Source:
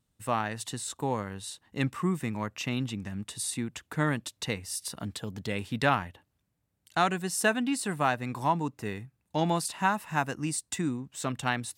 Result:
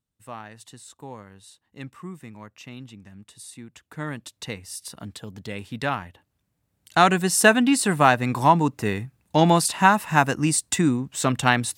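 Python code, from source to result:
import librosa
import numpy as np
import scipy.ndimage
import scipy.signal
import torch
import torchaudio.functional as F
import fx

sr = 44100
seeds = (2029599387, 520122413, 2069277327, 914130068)

y = fx.gain(x, sr, db=fx.line((3.57, -9.0), (4.36, -1.0), (6.01, -1.0), (7.13, 10.0)))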